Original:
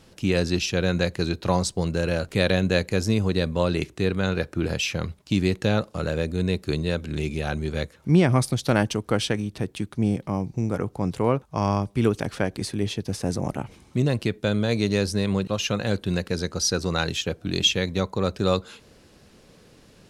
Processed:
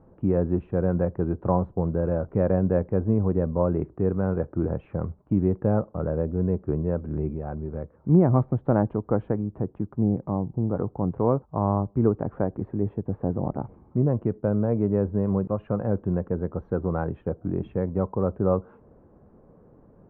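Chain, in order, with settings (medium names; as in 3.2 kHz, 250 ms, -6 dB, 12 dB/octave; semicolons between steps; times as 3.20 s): inverse Chebyshev low-pass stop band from 4.7 kHz, stop band 70 dB; 7.31–7.93 s: compression 3:1, threshold -29 dBFS, peak gain reduction 5.5 dB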